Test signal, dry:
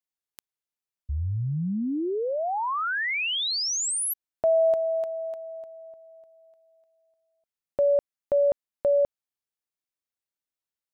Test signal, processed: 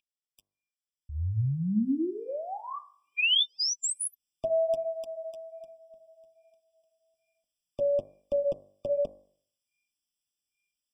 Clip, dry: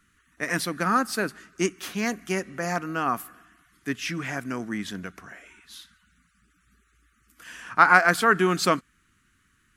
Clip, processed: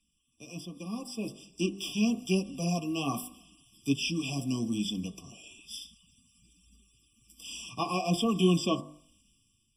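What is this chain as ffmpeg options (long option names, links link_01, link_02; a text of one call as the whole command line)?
ffmpeg -i in.wav -filter_complex "[0:a]bandreject=frequency=900:width=6.8,aeval=exprs='val(0)+0.002*sin(2*PI*2300*n/s)':channel_layout=same,equalizer=frequency=500:width_type=o:width=1:gain=-8,equalizer=frequency=1000:width_type=o:width=1:gain=-10,equalizer=frequency=2000:width_type=o:width=1:gain=-7,equalizer=frequency=4000:width_type=o:width=1:gain=11,equalizer=frequency=8000:width_type=o:width=1:gain=6,acrossover=split=380|1400|2700[link_01][link_02][link_03][link_04];[link_04]acompressor=threshold=-33dB:ratio=6:attack=0.35:release=211:detection=peak[link_05];[link_01][link_02][link_03][link_05]amix=inputs=4:normalize=0,bandreject=frequency=49.54:width_type=h:width=4,bandreject=frequency=99.08:width_type=h:width=4,bandreject=frequency=148.62:width_type=h:width=4,bandreject=frequency=198.16:width_type=h:width=4,bandreject=frequency=247.7:width_type=h:width=4,bandreject=frequency=297.24:width_type=h:width=4,bandreject=frequency=346.78:width_type=h:width=4,bandreject=frequency=396.32:width_type=h:width=4,bandreject=frequency=445.86:width_type=h:width=4,bandreject=frequency=495.4:width_type=h:width=4,bandreject=frequency=544.94:width_type=h:width=4,bandreject=frequency=594.48:width_type=h:width=4,bandreject=frequency=644.02:width_type=h:width=4,bandreject=frequency=693.56:width_type=h:width=4,bandreject=frequency=743.1:width_type=h:width=4,bandreject=frequency=792.64:width_type=h:width=4,bandreject=frequency=842.18:width_type=h:width=4,bandreject=frequency=891.72:width_type=h:width=4,bandreject=frequency=941.26:width_type=h:width=4,bandreject=frequency=990.8:width_type=h:width=4,bandreject=frequency=1040.34:width_type=h:width=4,bandreject=frequency=1089.88:width_type=h:width=4,bandreject=frequency=1139.42:width_type=h:width=4,bandreject=frequency=1188.96:width_type=h:width=4,bandreject=frequency=1238.5:width_type=h:width=4,bandreject=frequency=1288.04:width_type=h:width=4,bandreject=frequency=1337.58:width_type=h:width=4,bandreject=frequency=1387.12:width_type=h:width=4,bandreject=frequency=1436.66:width_type=h:width=4,bandreject=frequency=1486.2:width_type=h:width=4,bandreject=frequency=1535.74:width_type=h:width=4,bandreject=frequency=1585.28:width_type=h:width=4,bandreject=frequency=1634.82:width_type=h:width=4,bandreject=frequency=1684.36:width_type=h:width=4,bandreject=frequency=1733.9:width_type=h:width=4,bandreject=frequency=1783.44:width_type=h:width=4,bandreject=frequency=1832.98:width_type=h:width=4,bandreject=frequency=1882.52:width_type=h:width=4,bandreject=frequency=1932.06:width_type=h:width=4,flanger=delay=3.6:depth=5.5:regen=-18:speed=1.2:shape=sinusoidal,dynaudnorm=framelen=910:gausssize=3:maxgain=13dB,afftfilt=real='re*eq(mod(floor(b*sr/1024/1200),2),0)':imag='im*eq(mod(floor(b*sr/1024/1200),2),0)':win_size=1024:overlap=0.75,volume=-6dB" out.wav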